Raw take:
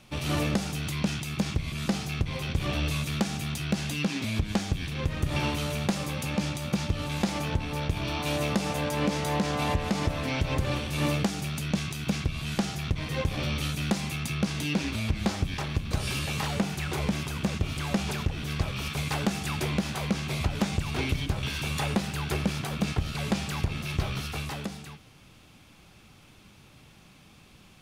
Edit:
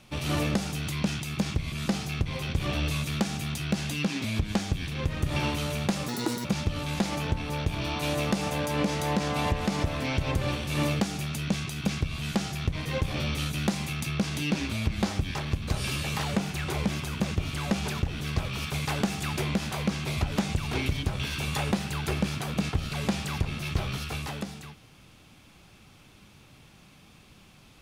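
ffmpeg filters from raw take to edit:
-filter_complex "[0:a]asplit=3[a][b][c];[a]atrim=end=6.084[d];[b]atrim=start=6.08:end=6.68,asetpts=PTS-STARTPTS,asetrate=71883,aresample=44100,atrim=end_sample=16233,asetpts=PTS-STARTPTS[e];[c]atrim=start=6.676[f];[d][e]acrossfade=d=0.004:c1=hsin:c2=hsin[g];[g][f]acrossfade=d=0.004:c1=hsin:c2=hsin"

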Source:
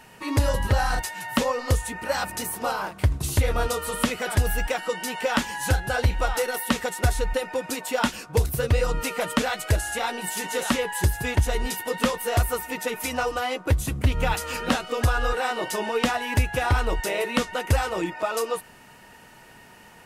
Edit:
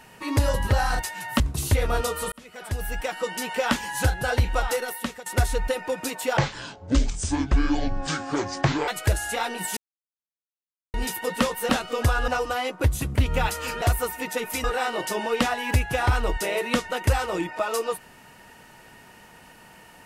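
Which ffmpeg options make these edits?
-filter_complex "[0:a]asplit=12[a][b][c][d][e][f][g][h][i][j][k][l];[a]atrim=end=1.402[m];[b]atrim=start=3.058:end=3.98,asetpts=PTS-STARTPTS,afade=t=out:st=0.918:d=0.004:c=hsin[n];[c]atrim=start=3.98:end=6.92,asetpts=PTS-STARTPTS,afade=t=in:d=1.02,afade=t=out:st=2.37:d=0.57:silence=0.149624[o];[d]atrim=start=6.92:end=8.034,asetpts=PTS-STARTPTS,afade=t=in:d=0.004:c=hsin:silence=0.149624[p];[e]atrim=start=8.03:end=9.51,asetpts=PTS-STARTPTS,asetrate=26019,aresample=44100[q];[f]atrim=start=9.506:end=10.4,asetpts=PTS-STARTPTS,afade=t=out:st=0.89:d=0.004:c=hsin[r];[g]atrim=start=10.4:end=11.57,asetpts=PTS-STARTPTS,volume=0[s];[h]atrim=start=11.57:end=12.322,asetpts=PTS-STARTPTS,afade=t=in:d=0.004:c=hsin[t];[i]atrim=start=14.678:end=15.272[u];[j]atrim=start=13.138:end=14.682[v];[k]atrim=start=12.318:end=13.142[w];[l]atrim=start=15.268[x];[n][o][p]concat=n=3:v=0:a=1[y];[m][y]acrossfade=d=0.004:c1=hsin:c2=hsin[z];[z][q]acrossfade=d=0.004:c1=hsin:c2=hsin[aa];[r][s][t]concat=n=3:v=0:a=1[ab];[aa][ab]acrossfade=d=0.004:c1=hsin:c2=hsin[ac];[ac][u]acrossfade=d=0.004:c1=hsin:c2=hsin[ad];[ad][v]acrossfade=d=0.004:c1=hsin:c2=hsin[ae];[ae][w]acrossfade=d=0.004:c1=hsin:c2=hsin[af];[af][x]acrossfade=d=0.004:c1=hsin:c2=hsin"

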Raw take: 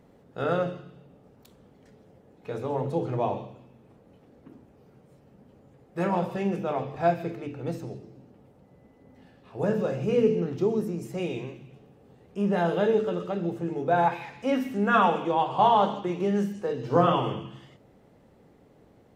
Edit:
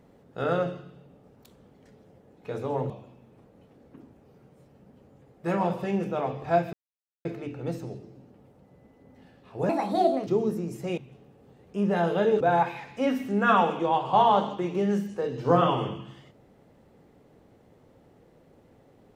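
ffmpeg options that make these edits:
-filter_complex "[0:a]asplit=7[a][b][c][d][e][f][g];[a]atrim=end=2.902[h];[b]atrim=start=3.418:end=7.25,asetpts=PTS-STARTPTS,afade=t=out:st=3.828:d=0.004:c=hsin,apad=pad_dur=0.52[i];[c]atrim=start=7.25:end=9.694,asetpts=PTS-STARTPTS,afade=t=in:d=0.004:c=hsin[j];[d]atrim=start=9.69:end=10.57,asetpts=PTS-STARTPTS,asetrate=67473,aresample=44100[k];[e]atrim=start=10.566:end=11.282[l];[f]atrim=start=11.588:end=13.022[m];[g]atrim=start=13.858[n];[i][j]concat=n=2:v=0:a=1[o];[h][o]acrossfade=d=0.004:c1=hsin:c2=hsin[p];[p][k]acrossfade=d=0.004:c1=hsin:c2=hsin[q];[q][l]acrossfade=d=0.004:c1=hsin:c2=hsin[r];[r][m]acrossfade=d=0.004:c1=hsin:c2=hsin[s];[s][n]acrossfade=d=0.004:c1=hsin:c2=hsin"

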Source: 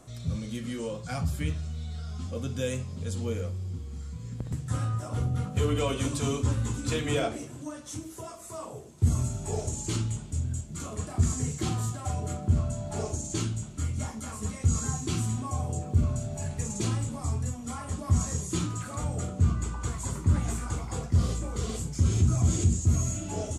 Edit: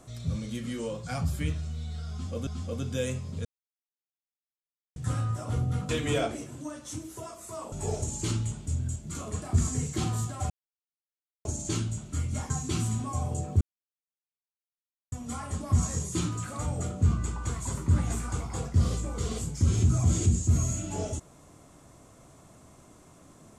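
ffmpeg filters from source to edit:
-filter_complex "[0:a]asplit=11[a][b][c][d][e][f][g][h][i][j][k];[a]atrim=end=2.472[l];[b]atrim=start=2.108:end=3.09,asetpts=PTS-STARTPTS,afade=t=out:st=0.978:d=0.004:c=hsin[m];[c]atrim=start=3.09:end=4.6,asetpts=PTS-STARTPTS,volume=0[n];[d]atrim=start=4.6:end=5.532,asetpts=PTS-STARTPTS,afade=t=in:d=0.004:c=hsin[o];[e]atrim=start=6.898:end=8.732[p];[f]atrim=start=9.368:end=12.15,asetpts=PTS-STARTPTS,afade=t=out:st=2.778:d=0.004:c=hsin[q];[g]atrim=start=12.15:end=13.1,asetpts=PTS-STARTPTS,volume=0[r];[h]atrim=start=13.1:end=14.152,asetpts=PTS-STARTPTS,afade=t=in:d=0.004:c=hsin[s];[i]atrim=start=14.878:end=15.99,asetpts=PTS-STARTPTS,afade=t=out:st=1.108:d=0.004:c=hsin[t];[j]atrim=start=15.99:end=17.5,asetpts=PTS-STARTPTS,volume=0[u];[k]atrim=start=17.5,asetpts=PTS-STARTPTS,afade=t=in:d=0.004:c=hsin[v];[m][n][o]concat=n=3:v=0:a=1[w];[l][w]acrossfade=d=0.004:c1=hsin:c2=hsin[x];[x][p]acrossfade=d=0.004:c1=hsin:c2=hsin[y];[q][r][s]concat=n=3:v=0:a=1[z];[y][z]acrossfade=d=0.004:c1=hsin:c2=hsin[aa];[t][u][v]concat=n=3:v=0:a=1[ab];[aa][ab]acrossfade=d=0.004:c1=hsin:c2=hsin"

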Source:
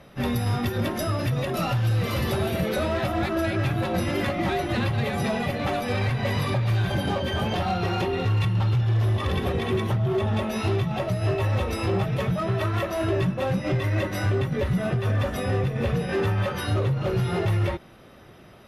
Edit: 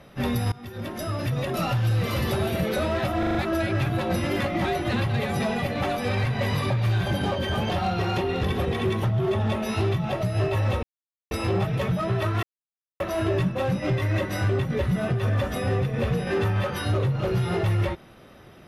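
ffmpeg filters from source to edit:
-filter_complex "[0:a]asplit=9[a][b][c][d][e][f][g][h][i];[a]atrim=end=0.52,asetpts=PTS-STARTPTS,afade=t=out:st=0.516:d=0.004:c=hsin:silence=0.0707946[j];[b]atrim=start=0.52:end=3.232,asetpts=PTS-STARTPTS,afade=t=in:d=1.24:c=qsin:silence=0.0707946[k];[c]atrim=start=3.188:end=3.232[l];[d]atrim=start=3.188:end=3.232[m];[e]atrim=start=3.188:end=3.232[n];[f]atrim=start=3.188:end=8.272[o];[g]atrim=start=9.298:end=11.7,asetpts=PTS-STARTPTS,afade=t=out:st=2.398:d=0.004:c=hsin,apad=pad_dur=0.48[p];[h]atrim=start=11.7:end=12.82,asetpts=PTS-STARTPTS,afade=t=in:d=0.004:c=hsin,afade=t=out:st=1.116:d=0.004:c=hsin,apad=pad_dur=0.57[q];[i]atrim=start=12.82,asetpts=PTS-STARTPTS,afade=t=in:d=0.004:c=hsin[r];[j][k]concat=n=2:v=0:a=1[s];[s][l]acrossfade=d=0.004:c1=hsin:c2=hsin[t];[t][m]acrossfade=d=0.004:c1=hsin:c2=hsin[u];[u][n]acrossfade=d=0.004:c1=hsin:c2=hsin[v];[v][o]acrossfade=d=0.004:c1=hsin:c2=hsin[w];[p][q][r]concat=n=3:v=0:a=1[x];[w][x]acrossfade=d=0.004:c1=hsin:c2=hsin"

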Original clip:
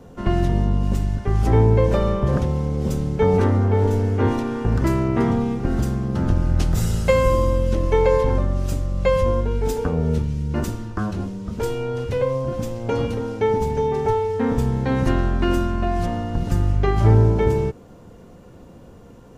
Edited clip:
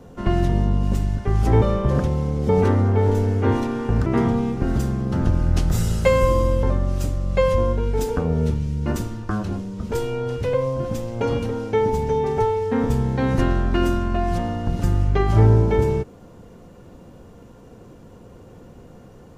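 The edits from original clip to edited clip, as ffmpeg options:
-filter_complex "[0:a]asplit=5[a][b][c][d][e];[a]atrim=end=1.622[f];[b]atrim=start=1.998:end=2.872[g];[c]atrim=start=3.248:end=4.822[h];[d]atrim=start=5.088:end=7.662[i];[e]atrim=start=8.308[j];[f][g]acrossfade=d=0.004:c1=hsin:c2=hsin[k];[k][h]acrossfade=d=0.004:c1=hsin:c2=hsin[l];[l][i]acrossfade=d=0.004:c1=hsin:c2=hsin[m];[m][j]acrossfade=d=0.004:c1=hsin:c2=hsin"

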